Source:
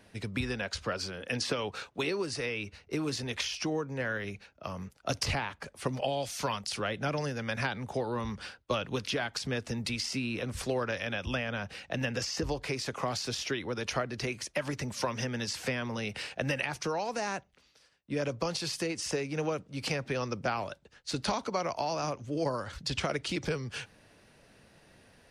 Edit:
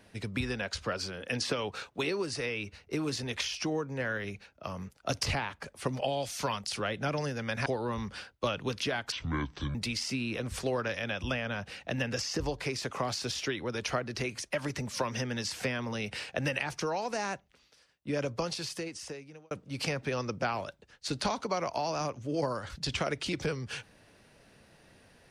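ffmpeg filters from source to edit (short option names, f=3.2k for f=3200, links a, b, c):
-filter_complex "[0:a]asplit=5[a][b][c][d][e];[a]atrim=end=7.662[f];[b]atrim=start=7.928:end=9.394[g];[c]atrim=start=9.39:end=9.78,asetpts=PTS-STARTPTS,asetrate=27342,aresample=44100,atrim=end_sample=27740,asetpts=PTS-STARTPTS[h];[d]atrim=start=9.776:end=19.54,asetpts=PTS-STARTPTS,afade=t=out:st=8.584:d=1.18[i];[e]atrim=start=19.54,asetpts=PTS-STARTPTS,afade=t=in:d=0.004:c=hsin[j];[f][g]acrossfade=d=0.004:c1=hsin:c2=hsin[k];[k][h]acrossfade=d=0.004:c1=hsin:c2=hsin[l];[i][j]concat=n=2:v=0:a=1[m];[l][m]acrossfade=d=0.004:c1=hsin:c2=hsin"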